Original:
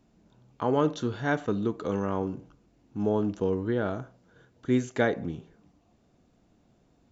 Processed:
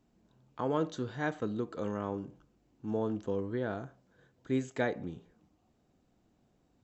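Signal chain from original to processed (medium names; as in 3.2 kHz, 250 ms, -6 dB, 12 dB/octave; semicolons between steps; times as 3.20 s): speed mistake 24 fps film run at 25 fps; trim -6.5 dB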